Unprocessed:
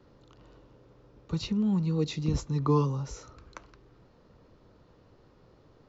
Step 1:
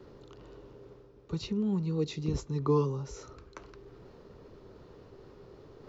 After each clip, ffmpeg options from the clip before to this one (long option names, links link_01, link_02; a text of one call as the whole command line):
ffmpeg -i in.wav -af "equalizer=frequency=400:width=4.9:gain=10.5,areverse,acompressor=mode=upward:threshold=-38dB:ratio=2.5,areverse,volume=-4dB" out.wav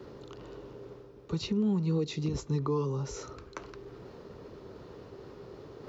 ffmpeg -i in.wav -af "highpass=frequency=79:poles=1,alimiter=level_in=3dB:limit=-24dB:level=0:latency=1:release=252,volume=-3dB,volume=5.5dB" out.wav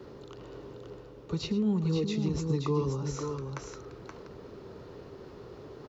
ffmpeg -i in.wav -af "aecho=1:1:108|526:0.178|0.531" out.wav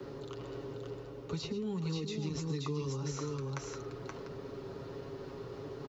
ffmpeg -i in.wav -filter_complex "[0:a]aecho=1:1:7.3:0.51,acrossover=split=87|280|1600|5700[link_01][link_02][link_03][link_04][link_05];[link_01]acompressor=threshold=-58dB:ratio=4[link_06];[link_02]acompressor=threshold=-41dB:ratio=4[link_07];[link_03]acompressor=threshold=-43dB:ratio=4[link_08];[link_04]acompressor=threshold=-48dB:ratio=4[link_09];[link_05]acompressor=threshold=-54dB:ratio=4[link_10];[link_06][link_07][link_08][link_09][link_10]amix=inputs=5:normalize=0,volume=1.5dB" out.wav